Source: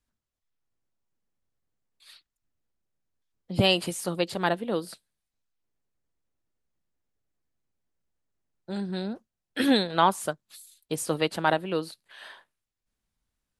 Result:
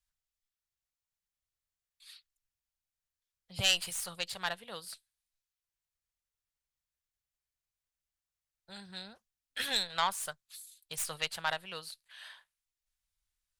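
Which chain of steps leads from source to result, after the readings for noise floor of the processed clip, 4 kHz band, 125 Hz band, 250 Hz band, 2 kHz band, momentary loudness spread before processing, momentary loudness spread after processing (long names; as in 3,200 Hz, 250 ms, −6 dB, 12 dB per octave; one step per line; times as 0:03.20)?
below −85 dBFS, −2.5 dB, −15.5 dB, −23.5 dB, −4.5 dB, 19 LU, 21 LU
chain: stylus tracing distortion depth 0.044 ms
guitar amp tone stack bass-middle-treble 10-0-10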